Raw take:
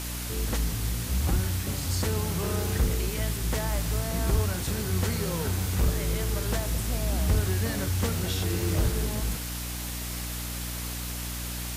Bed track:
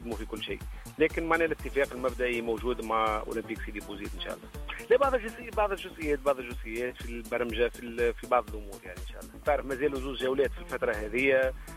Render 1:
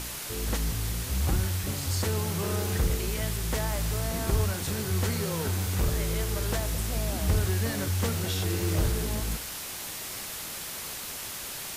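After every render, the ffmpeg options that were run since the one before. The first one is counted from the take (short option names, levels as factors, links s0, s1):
-af "bandreject=f=60:t=h:w=4,bandreject=f=120:t=h:w=4,bandreject=f=180:t=h:w=4,bandreject=f=240:t=h:w=4,bandreject=f=300:t=h:w=4"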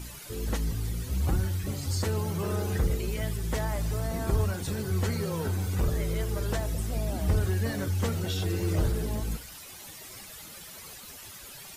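-af "afftdn=nr=12:nf=-38"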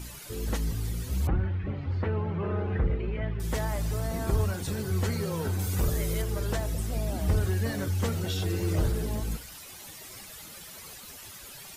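-filter_complex "[0:a]asettb=1/sr,asplit=3[s0][s1][s2];[s0]atrim=end=1.274[s3];[s1]atrim=start=1.27:end=3.4,asetpts=PTS-STARTPTS,afade=t=in:d=0.004:c=qsin,afade=t=out:st=2.126:d=0.004:c=qsin,lowpass=f=2500:w=0.5412,lowpass=f=2500:w=1.3066[s4];[s2]atrim=start=3.396[s5];[s3][s4]acrossfade=d=0.004:c1=hsin:c2=qsin[s6];[s6][s5]acrossfade=d=0.004:c1=qsin:c2=hsin,asettb=1/sr,asplit=3[s7][s8][s9];[s7]atrim=end=5.594[s10];[s8]atrim=start=5.59:end=6.22,asetpts=PTS-STARTPTS,afade=t=in:d=0.004:c=qsin,afade=t=out:st=0.626:d=0.004:c=qsin,highshelf=f=5500:g=8[s11];[s9]atrim=start=6.216[s12];[s10][s11]acrossfade=d=0.004:c1=hsin:c2=qsin[s13];[s13][s12]acrossfade=d=0.004:c1=qsin:c2=hsin"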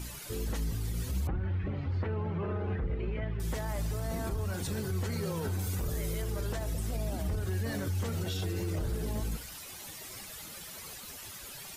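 -af "acompressor=threshold=0.0447:ratio=6,alimiter=level_in=1.19:limit=0.0631:level=0:latency=1:release=40,volume=0.841"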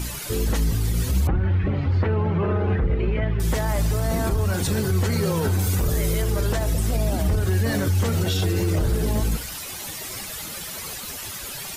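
-af "volume=3.76"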